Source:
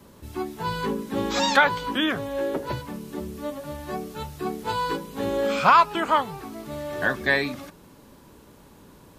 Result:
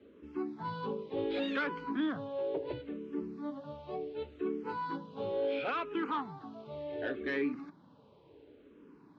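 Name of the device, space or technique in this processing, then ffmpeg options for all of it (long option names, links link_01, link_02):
barber-pole phaser into a guitar amplifier: -filter_complex "[0:a]asplit=2[link_01][link_02];[link_02]afreqshift=-0.7[link_03];[link_01][link_03]amix=inputs=2:normalize=1,asoftclip=type=tanh:threshold=-20dB,highpass=96,equalizer=frequency=290:width_type=q:width=4:gain=8,equalizer=frequency=440:width_type=q:width=4:gain=9,equalizer=frequency=1800:width_type=q:width=4:gain=-4,lowpass=frequency=3700:width=0.5412,lowpass=frequency=3700:width=1.3066,volume=-8.5dB"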